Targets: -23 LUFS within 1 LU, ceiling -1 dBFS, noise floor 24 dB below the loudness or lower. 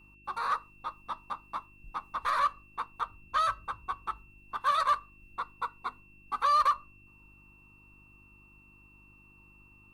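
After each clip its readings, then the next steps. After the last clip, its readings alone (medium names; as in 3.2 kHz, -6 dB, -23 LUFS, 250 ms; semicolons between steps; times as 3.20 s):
hum 50 Hz; highest harmonic 350 Hz; hum level -59 dBFS; steady tone 2.7 kHz; tone level -58 dBFS; loudness -32.0 LUFS; peak level -17.0 dBFS; loudness target -23.0 LUFS
-> de-hum 50 Hz, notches 7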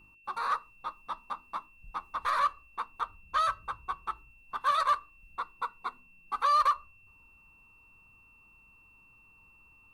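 hum not found; steady tone 2.7 kHz; tone level -58 dBFS
-> band-stop 2.7 kHz, Q 30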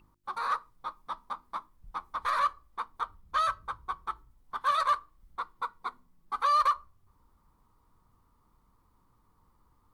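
steady tone not found; loudness -32.0 LUFS; peak level -17.0 dBFS; loudness target -23.0 LUFS
-> trim +9 dB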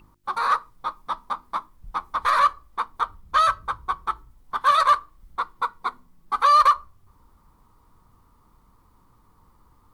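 loudness -23.0 LUFS; peak level -8.0 dBFS; noise floor -59 dBFS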